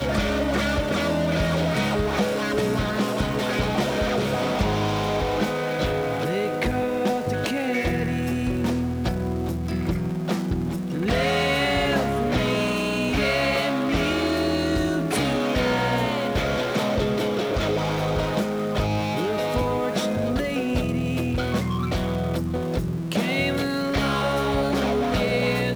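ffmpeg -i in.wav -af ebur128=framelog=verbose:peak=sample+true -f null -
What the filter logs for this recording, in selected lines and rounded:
Integrated loudness:
  I:         -23.9 LUFS
  Threshold: -33.9 LUFS
Loudness range:
  LRA:         2.5 LU
  Threshold: -44.0 LUFS
  LRA low:   -25.2 LUFS
  LRA high:  -22.6 LUFS
Sample peak:
  Peak:       -8.5 dBFS
True peak:
  Peak:       -8.5 dBFS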